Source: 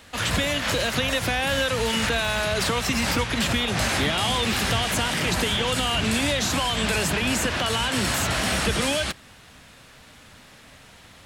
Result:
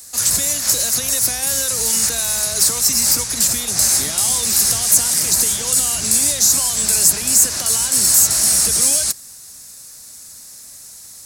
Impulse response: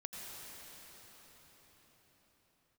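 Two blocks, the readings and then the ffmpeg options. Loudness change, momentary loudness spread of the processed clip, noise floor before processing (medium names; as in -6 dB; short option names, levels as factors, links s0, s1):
+9.0 dB, 5 LU, -49 dBFS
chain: -af "aexciter=amount=8.1:drive=9.8:freq=4800,volume=0.501"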